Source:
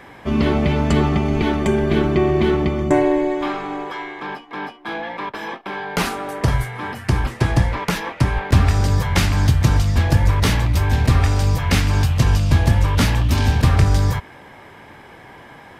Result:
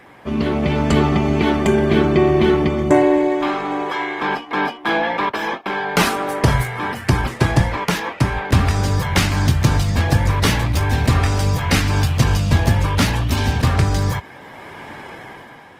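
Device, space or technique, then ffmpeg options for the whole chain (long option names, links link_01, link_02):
video call: -af "highpass=frequency=100:poles=1,dynaudnorm=framelen=130:gausssize=11:maxgain=11.5dB,volume=-1.5dB" -ar 48000 -c:a libopus -b:a 20k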